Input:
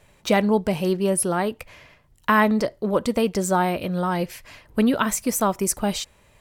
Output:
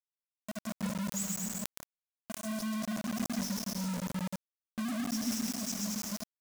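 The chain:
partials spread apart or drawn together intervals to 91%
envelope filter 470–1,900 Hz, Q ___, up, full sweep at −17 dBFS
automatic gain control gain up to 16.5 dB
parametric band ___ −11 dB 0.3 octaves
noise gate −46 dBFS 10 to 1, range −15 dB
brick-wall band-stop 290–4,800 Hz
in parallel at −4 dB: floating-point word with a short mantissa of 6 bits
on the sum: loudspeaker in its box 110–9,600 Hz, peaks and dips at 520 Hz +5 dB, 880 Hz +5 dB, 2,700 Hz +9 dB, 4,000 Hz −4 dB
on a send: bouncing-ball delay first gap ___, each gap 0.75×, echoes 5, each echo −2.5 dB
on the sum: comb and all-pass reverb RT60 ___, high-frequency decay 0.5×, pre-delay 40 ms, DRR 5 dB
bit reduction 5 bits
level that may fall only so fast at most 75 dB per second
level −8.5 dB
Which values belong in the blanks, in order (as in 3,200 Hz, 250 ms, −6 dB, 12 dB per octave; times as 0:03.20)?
2.7, 300 Hz, 130 ms, 0.96 s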